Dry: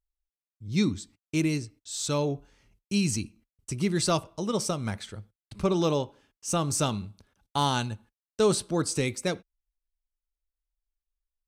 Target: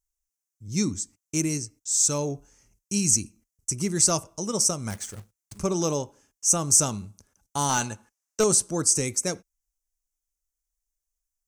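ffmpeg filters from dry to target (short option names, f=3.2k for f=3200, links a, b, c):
-filter_complex "[0:a]highshelf=f=4.9k:t=q:w=3:g=9,asettb=1/sr,asplit=3[a][b][c];[a]atrim=end=4.904[d];[b]atrim=start=4.9:end=5.58,asetpts=PTS-STARTPTS,afade=t=in:d=0.004:c=qsin,afade=t=out:st=0.676:d=0.004:c=qsin,acrusher=bits=2:mode=log:mix=0:aa=0.000001[e];[c]atrim=start=5.576[f];[d][e]acrossfade=d=0.004:c1=hsin:c2=qsin[g];[g][f]acrossfade=d=0.004:c1=qsin:c2=hsin,asettb=1/sr,asplit=3[h][i][j];[h]atrim=end=7.694[k];[i]atrim=start=7.69:end=8.44,asetpts=PTS-STARTPTS,afade=t=in:d=0.004:c=qsin,afade=t=out:st=0.746:d=0.004:c=qsin,asplit=2[l][m];[m]highpass=f=720:p=1,volume=16dB,asoftclip=type=tanh:threshold=-9dB[n];[l][n]amix=inputs=2:normalize=0,lowpass=f=3.1k:p=1,volume=-6dB[o];[j]atrim=start=8.436[p];[k][o]acrossfade=d=0.004:c1=hsin:c2=qsin[q];[q][p]acrossfade=d=0.004:c1=qsin:c2=hsin,volume=-1dB"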